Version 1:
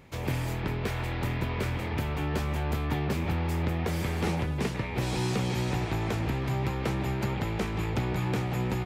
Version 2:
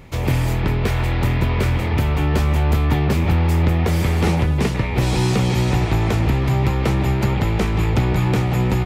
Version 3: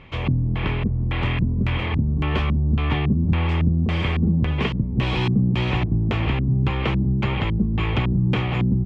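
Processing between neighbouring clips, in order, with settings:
low shelf 76 Hz +10 dB; notch 1600 Hz, Q 23; gain +9 dB
small resonant body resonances 1100/3200 Hz, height 10 dB; LFO low-pass square 1.8 Hz 220–2800 Hz; gain -4.5 dB

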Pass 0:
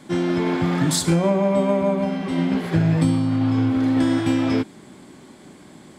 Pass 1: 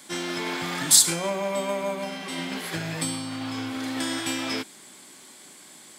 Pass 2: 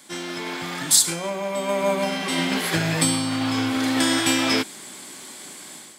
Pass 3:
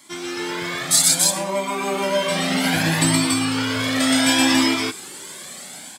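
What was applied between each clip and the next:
tilt +4.5 dB/oct; gain -4 dB
AGC gain up to 9.5 dB; gain -1 dB
loudspeakers at several distances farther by 42 m -1 dB, 97 m -2 dB; cascading flanger rising 0.64 Hz; gain +4 dB

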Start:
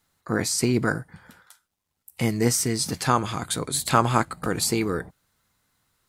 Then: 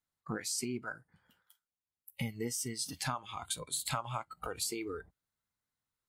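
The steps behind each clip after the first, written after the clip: compressor 6:1, threshold -27 dBFS, peak gain reduction 13.5 dB; spectral noise reduction 16 dB; gain -5 dB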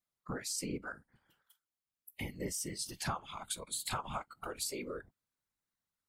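whisperiser; gain -2 dB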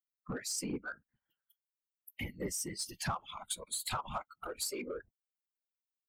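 per-bin expansion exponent 1.5; in parallel at -3 dB: soft clip -39.5 dBFS, distortion -10 dB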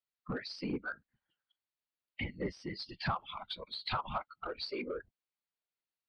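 elliptic low-pass 4600 Hz, stop band 40 dB; gain +2.5 dB

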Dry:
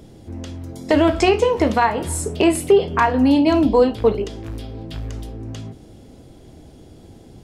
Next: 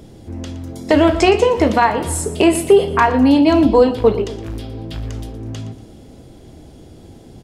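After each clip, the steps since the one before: feedback echo 0.118 s, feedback 39%, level -15 dB; gain +3 dB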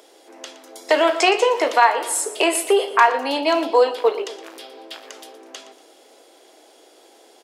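Bessel high-pass 650 Hz, order 8; gain +1.5 dB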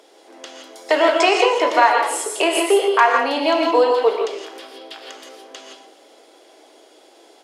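high shelf 10000 Hz -11 dB; non-linear reverb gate 0.19 s rising, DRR 2 dB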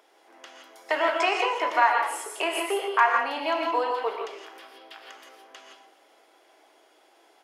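ten-band EQ 250 Hz -10 dB, 500 Hz -9 dB, 4000 Hz -8 dB, 8000 Hz -9 dB; gain -3 dB

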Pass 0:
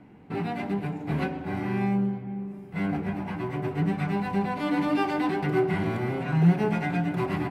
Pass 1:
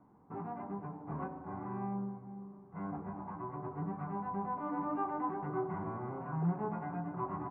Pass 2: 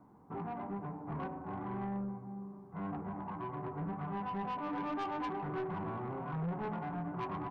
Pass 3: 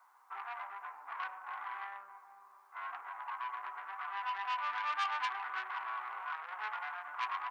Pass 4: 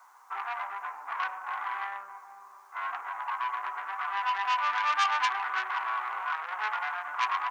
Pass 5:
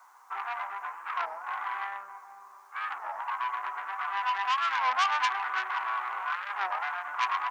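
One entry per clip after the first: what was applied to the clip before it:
ladder low-pass 1200 Hz, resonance 65%; gain -2.5 dB
soft clip -36.5 dBFS, distortion -11 dB; gain +3 dB
HPF 1200 Hz 24 dB/oct; gain +10.5 dB
bell 6400 Hz +7 dB 0.61 oct; gain +8.5 dB
record warp 33 1/3 rpm, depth 250 cents

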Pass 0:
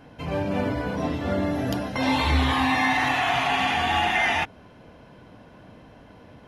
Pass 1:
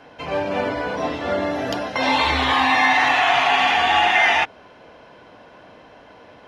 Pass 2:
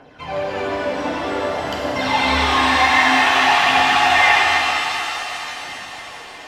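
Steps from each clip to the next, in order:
three-band isolator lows -14 dB, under 360 Hz, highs -15 dB, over 7400 Hz; gain +6.5 dB
thinning echo 0.355 s, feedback 82%, high-pass 160 Hz, level -20 dB; phaser 0.53 Hz, delay 3.9 ms, feedback 58%; shimmer reverb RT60 3.3 s, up +7 st, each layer -8 dB, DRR -2 dB; gain -4 dB

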